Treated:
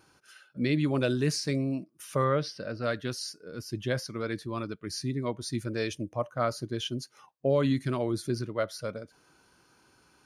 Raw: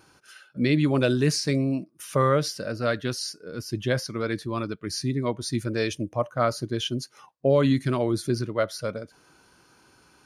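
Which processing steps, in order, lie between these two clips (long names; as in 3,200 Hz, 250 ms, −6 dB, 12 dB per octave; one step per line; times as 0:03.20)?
0:02.24–0:02.84: Savitzky-Golay smoothing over 15 samples
level −5 dB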